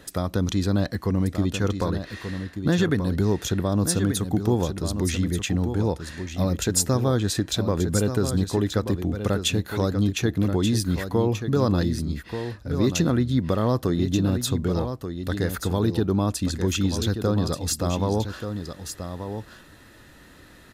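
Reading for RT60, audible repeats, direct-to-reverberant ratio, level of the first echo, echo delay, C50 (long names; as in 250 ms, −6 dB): no reverb audible, 1, no reverb audible, −8.5 dB, 1,183 ms, no reverb audible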